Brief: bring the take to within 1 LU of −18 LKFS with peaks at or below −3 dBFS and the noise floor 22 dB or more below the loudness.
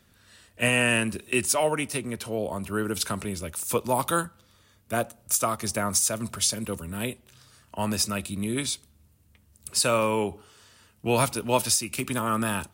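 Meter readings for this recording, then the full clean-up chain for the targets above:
integrated loudness −26.5 LKFS; sample peak −10.0 dBFS; target loudness −18.0 LKFS
→ level +8.5 dB
brickwall limiter −3 dBFS

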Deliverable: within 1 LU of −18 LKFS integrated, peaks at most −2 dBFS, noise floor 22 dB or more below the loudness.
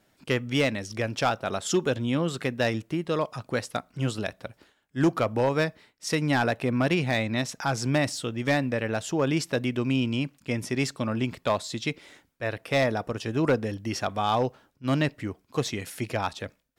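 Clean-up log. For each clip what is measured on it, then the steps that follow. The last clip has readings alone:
share of clipped samples 0.4%; peaks flattened at −15.5 dBFS; integrated loudness −27.5 LKFS; sample peak −15.5 dBFS; target loudness −18.0 LKFS
→ clipped peaks rebuilt −15.5 dBFS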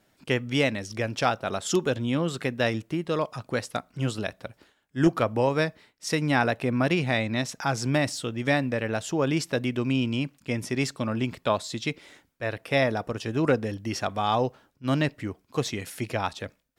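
share of clipped samples 0.0%; integrated loudness −27.5 LKFS; sample peak −7.5 dBFS; target loudness −18.0 LKFS
→ level +9.5 dB
brickwall limiter −2 dBFS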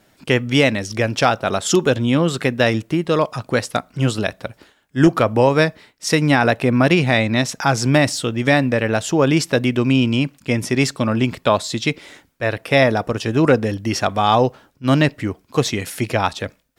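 integrated loudness −18.0 LKFS; sample peak −2.0 dBFS; background noise floor −58 dBFS

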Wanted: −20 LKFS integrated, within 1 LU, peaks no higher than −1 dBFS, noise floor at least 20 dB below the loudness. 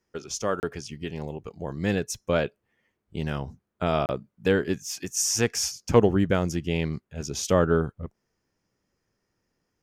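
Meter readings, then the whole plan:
number of dropouts 2; longest dropout 29 ms; integrated loudness −26.5 LKFS; sample peak −5.5 dBFS; target loudness −20.0 LKFS
→ repair the gap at 0:00.60/0:04.06, 29 ms
level +6.5 dB
brickwall limiter −1 dBFS

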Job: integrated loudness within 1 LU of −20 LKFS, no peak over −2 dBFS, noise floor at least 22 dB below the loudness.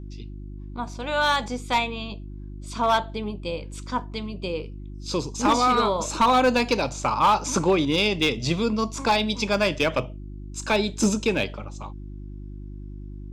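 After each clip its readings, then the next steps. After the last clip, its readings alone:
share of clipped samples 0.6%; peaks flattened at −13.0 dBFS; mains hum 50 Hz; hum harmonics up to 350 Hz; level of the hum −35 dBFS; integrated loudness −23.5 LKFS; sample peak −13.0 dBFS; target loudness −20.0 LKFS
→ clipped peaks rebuilt −13 dBFS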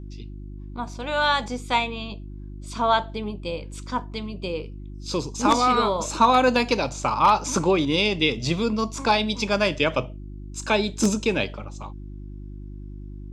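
share of clipped samples 0.0%; mains hum 50 Hz; hum harmonics up to 350 Hz; level of the hum −35 dBFS
→ hum removal 50 Hz, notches 7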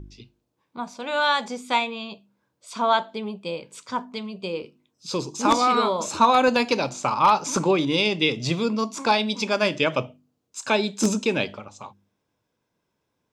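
mains hum none found; integrated loudness −23.0 LKFS; sample peak −4.0 dBFS; target loudness −20.0 LKFS
→ level +3 dB
brickwall limiter −2 dBFS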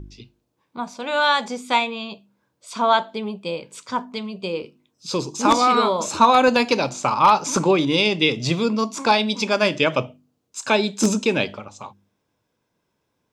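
integrated loudness −20.0 LKFS; sample peak −2.0 dBFS; background noise floor −74 dBFS

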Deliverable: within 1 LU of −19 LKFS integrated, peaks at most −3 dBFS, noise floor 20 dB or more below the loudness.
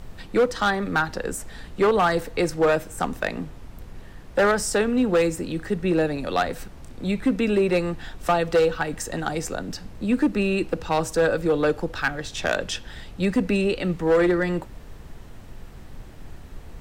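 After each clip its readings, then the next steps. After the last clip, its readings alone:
share of clipped samples 1.6%; peaks flattened at −14.0 dBFS; background noise floor −42 dBFS; target noise floor −44 dBFS; integrated loudness −23.5 LKFS; sample peak −14.0 dBFS; target loudness −19.0 LKFS
→ clipped peaks rebuilt −14 dBFS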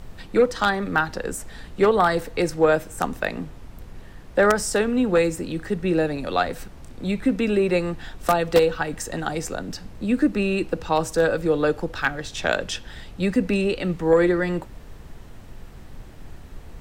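share of clipped samples 0.0%; background noise floor −42 dBFS; target noise floor −43 dBFS
→ noise reduction from a noise print 6 dB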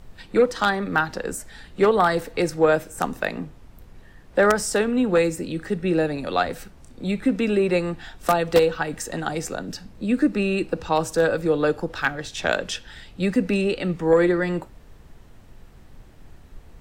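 background noise floor −48 dBFS; integrated loudness −23.0 LKFS; sample peak −5.0 dBFS; target loudness −19.0 LKFS
→ level +4 dB
brickwall limiter −3 dBFS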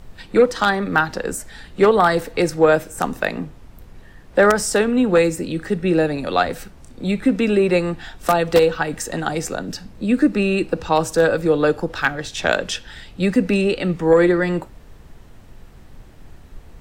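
integrated loudness −19.0 LKFS; sample peak −3.0 dBFS; background noise floor −44 dBFS

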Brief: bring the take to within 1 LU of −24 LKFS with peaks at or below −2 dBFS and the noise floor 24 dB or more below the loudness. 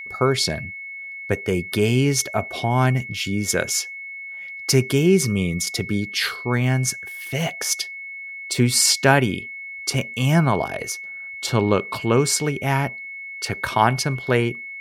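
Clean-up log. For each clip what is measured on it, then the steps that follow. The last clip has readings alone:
interfering tone 2,200 Hz; level of the tone −32 dBFS; integrated loudness −21.5 LKFS; sample peak −2.5 dBFS; target loudness −24.0 LKFS
→ notch filter 2,200 Hz, Q 30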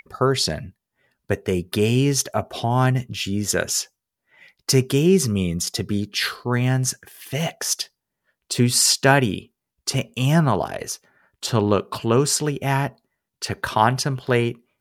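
interfering tone none found; integrated loudness −21.5 LKFS; sample peak −2.5 dBFS; target loudness −24.0 LKFS
→ level −2.5 dB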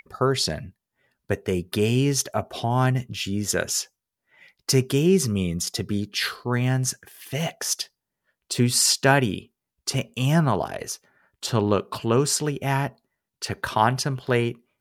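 integrated loudness −24.0 LKFS; sample peak −5.0 dBFS; background noise floor −85 dBFS

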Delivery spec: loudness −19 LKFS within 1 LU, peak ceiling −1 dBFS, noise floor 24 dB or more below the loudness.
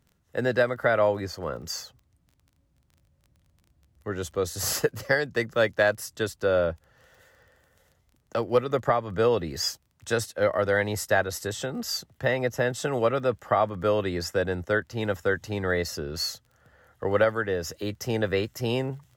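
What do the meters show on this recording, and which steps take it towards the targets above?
crackle rate 19 per second; integrated loudness −27.0 LKFS; sample peak −10.5 dBFS; target loudness −19.0 LKFS
→ click removal
level +8 dB

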